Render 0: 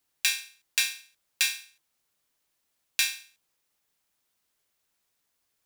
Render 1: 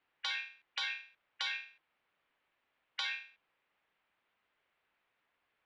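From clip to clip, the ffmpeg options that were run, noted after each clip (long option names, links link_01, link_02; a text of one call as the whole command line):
ffmpeg -i in.wav -af "lowpass=frequency=2700:width=0.5412,lowpass=frequency=2700:width=1.3066,afftfilt=real='re*lt(hypot(re,im),0.0562)':imag='im*lt(hypot(re,im),0.0562)':win_size=1024:overlap=0.75,lowshelf=frequency=340:gain=-10.5,volume=6dB" out.wav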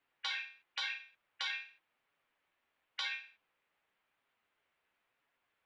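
ffmpeg -i in.wav -af "flanger=delay=7.1:depth=5.5:regen=-34:speed=0.95:shape=sinusoidal,volume=2.5dB" out.wav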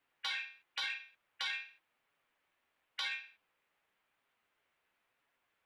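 ffmpeg -i in.wav -af "asoftclip=type=tanh:threshold=-27.5dB,volume=1dB" out.wav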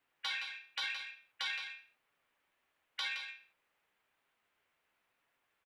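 ffmpeg -i in.wav -af "aecho=1:1:168:0.398" out.wav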